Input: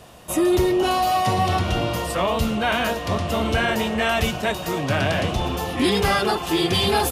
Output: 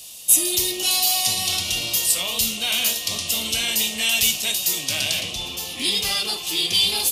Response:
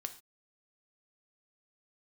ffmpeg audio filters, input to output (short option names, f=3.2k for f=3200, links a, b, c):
-filter_complex "[0:a]asetnsamples=n=441:p=0,asendcmd='5.2 highshelf g -3.5',highshelf=f=4.5k:g=7.5,aexciter=amount=10.4:drive=5.6:freq=2.4k[a];[1:a]atrim=start_sample=2205,atrim=end_sample=3528[b];[a][b]afir=irnorm=-1:irlink=0,volume=-11.5dB"